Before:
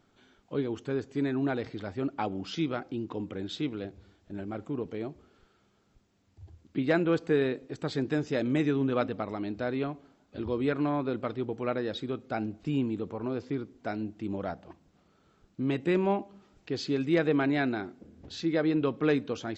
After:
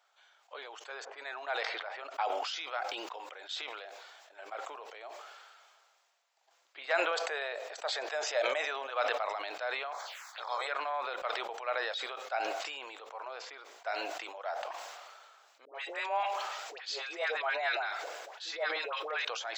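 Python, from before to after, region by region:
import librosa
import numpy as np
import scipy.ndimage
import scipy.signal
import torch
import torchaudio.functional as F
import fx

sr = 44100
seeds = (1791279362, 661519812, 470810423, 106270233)

y = fx.chain(x, sr, fx.env_lowpass(base_hz=930.0, full_db=-25.0),
    fx.highpass(hz=230.0, slope=12), at=(1.05, 2.14))
y = fx.chain(y, sr, fx.highpass(hz=280.0, slope=12),
    fx.peak_eq(hz=620.0, db=8.0, octaves=0.53), at=(7.11, 8.9))
y = fx.spec_clip(y, sr, under_db=26, at=(9.91, 10.66), fade=0.02)
y = fx.env_phaser(y, sr, low_hz=300.0, high_hz=2800.0, full_db=-35.0, at=(9.91, 10.66), fade=0.02)
y = fx.chain(y, sr, fx.highpass(hz=320.0, slope=24),
    fx.dispersion(late='highs', ms=103.0, hz=900.0), at=(15.65, 19.25))
y = scipy.signal.sosfilt(scipy.signal.butter(6, 630.0, 'highpass', fs=sr, output='sos'), y)
y = fx.sustainer(y, sr, db_per_s=29.0)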